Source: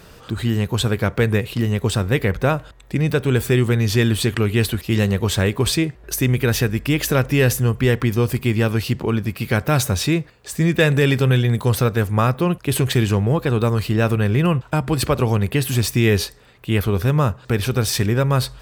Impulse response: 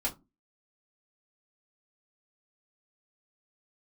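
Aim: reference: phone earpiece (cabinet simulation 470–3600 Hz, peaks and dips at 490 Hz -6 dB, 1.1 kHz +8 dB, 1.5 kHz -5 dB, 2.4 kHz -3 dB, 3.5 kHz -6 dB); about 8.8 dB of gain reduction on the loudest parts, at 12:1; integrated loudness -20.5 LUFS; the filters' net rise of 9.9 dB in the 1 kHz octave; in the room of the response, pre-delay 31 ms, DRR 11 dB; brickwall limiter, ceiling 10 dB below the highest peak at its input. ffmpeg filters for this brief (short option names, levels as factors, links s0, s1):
-filter_complex "[0:a]equalizer=f=1000:t=o:g=8,acompressor=threshold=0.112:ratio=12,alimiter=limit=0.15:level=0:latency=1,asplit=2[s0][s1];[1:a]atrim=start_sample=2205,adelay=31[s2];[s1][s2]afir=irnorm=-1:irlink=0,volume=0.158[s3];[s0][s3]amix=inputs=2:normalize=0,highpass=470,equalizer=f=490:t=q:w=4:g=-6,equalizer=f=1100:t=q:w=4:g=8,equalizer=f=1500:t=q:w=4:g=-5,equalizer=f=2400:t=q:w=4:g=-3,equalizer=f=3500:t=q:w=4:g=-6,lowpass=f=3600:w=0.5412,lowpass=f=3600:w=1.3066,volume=3.76"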